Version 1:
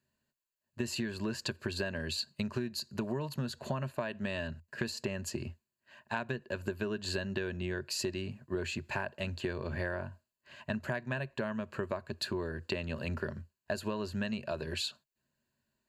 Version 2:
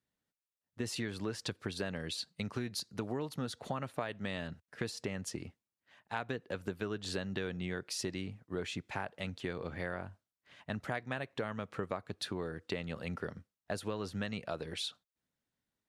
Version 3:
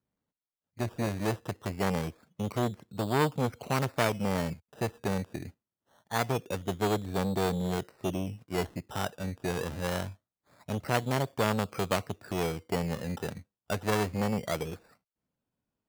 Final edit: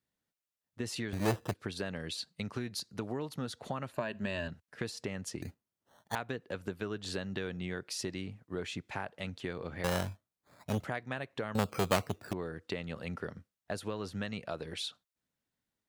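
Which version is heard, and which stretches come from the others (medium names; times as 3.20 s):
2
1.13–1.54 s: from 3
3.93–4.48 s: from 1
5.42–6.15 s: from 3
9.84–10.84 s: from 3
11.55–12.33 s: from 3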